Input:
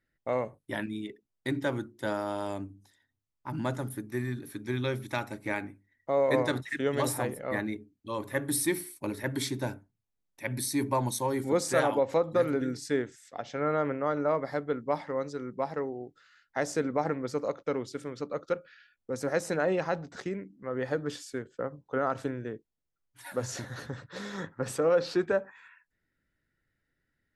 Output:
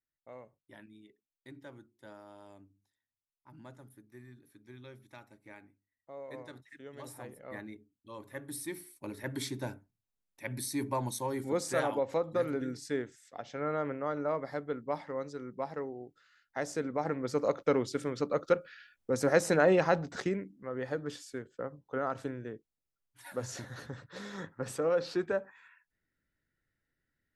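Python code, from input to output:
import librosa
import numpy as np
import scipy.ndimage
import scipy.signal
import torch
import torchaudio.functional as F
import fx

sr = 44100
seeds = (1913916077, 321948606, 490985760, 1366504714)

y = fx.gain(x, sr, db=fx.line((6.92, -19.5), (7.42, -12.0), (8.64, -12.0), (9.35, -5.0), (16.94, -5.0), (17.57, 3.5), (20.23, 3.5), (20.73, -4.5)))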